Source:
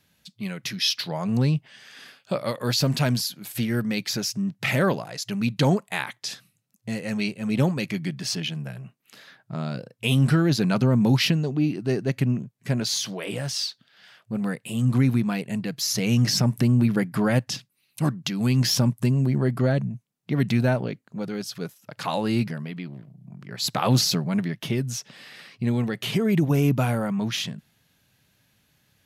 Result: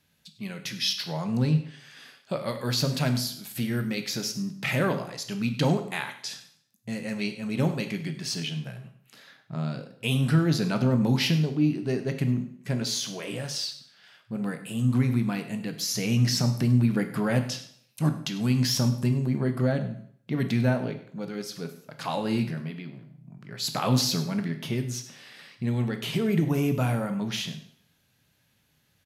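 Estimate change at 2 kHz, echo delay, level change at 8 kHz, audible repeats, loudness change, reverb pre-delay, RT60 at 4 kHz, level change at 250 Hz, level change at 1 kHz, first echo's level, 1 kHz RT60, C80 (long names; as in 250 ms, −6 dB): −3.0 dB, 100 ms, −3.0 dB, 1, −3.0 dB, 6 ms, 0.60 s, −3.0 dB, −3.0 dB, −18.0 dB, 0.65 s, 12.5 dB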